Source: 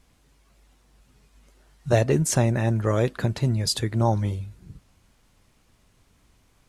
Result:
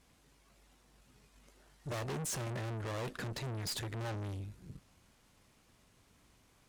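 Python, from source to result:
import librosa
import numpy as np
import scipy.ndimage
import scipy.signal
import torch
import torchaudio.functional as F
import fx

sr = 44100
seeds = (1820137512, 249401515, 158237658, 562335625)

y = fx.tube_stage(x, sr, drive_db=36.0, bias=0.6)
y = fx.low_shelf(y, sr, hz=75.0, db=-9.0)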